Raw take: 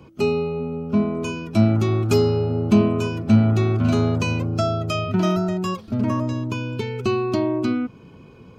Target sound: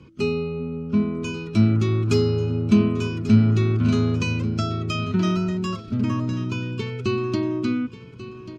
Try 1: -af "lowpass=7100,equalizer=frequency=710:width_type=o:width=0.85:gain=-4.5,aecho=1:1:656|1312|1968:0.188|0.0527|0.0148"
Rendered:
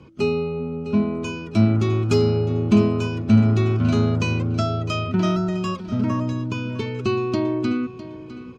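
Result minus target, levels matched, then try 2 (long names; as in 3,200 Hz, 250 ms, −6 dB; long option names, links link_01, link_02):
echo 483 ms early; 1,000 Hz band +2.5 dB
-af "lowpass=7100,equalizer=frequency=710:width_type=o:width=0.85:gain=-14.5,aecho=1:1:1139|2278|3417:0.188|0.0527|0.0148"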